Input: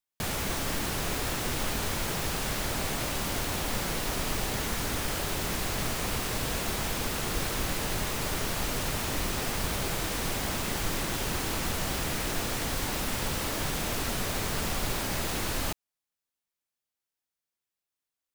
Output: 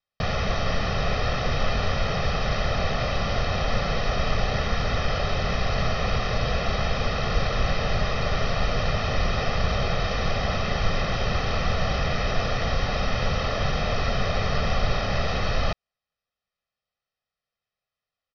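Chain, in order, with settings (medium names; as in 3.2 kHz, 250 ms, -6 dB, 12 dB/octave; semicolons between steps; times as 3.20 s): steep low-pass 5.8 kHz 96 dB/octave; treble shelf 3.7 kHz -8.5 dB; comb 1.6 ms, depth 75%; trim +5.5 dB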